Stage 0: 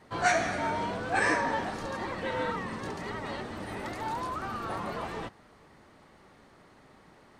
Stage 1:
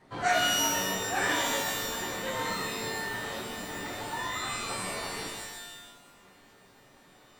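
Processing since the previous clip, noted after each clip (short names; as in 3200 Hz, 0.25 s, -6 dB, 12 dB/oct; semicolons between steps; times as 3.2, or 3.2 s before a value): reverb removal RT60 0.78 s; shimmer reverb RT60 1.1 s, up +12 st, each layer -2 dB, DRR -1 dB; gain -4.5 dB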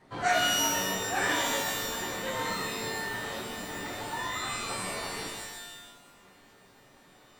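nothing audible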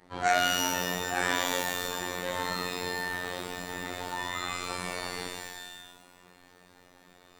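robotiser 89.6 Hz; gain +2 dB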